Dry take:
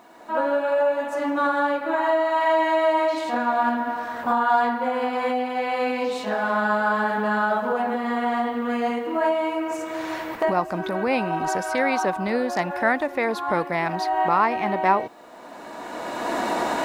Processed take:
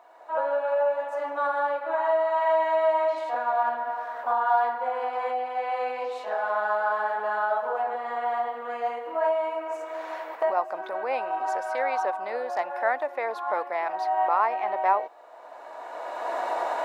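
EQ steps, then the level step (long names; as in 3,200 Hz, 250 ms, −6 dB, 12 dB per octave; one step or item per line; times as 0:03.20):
four-pole ladder high-pass 490 Hz, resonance 30%
high-shelf EQ 2,400 Hz −11 dB
+3.0 dB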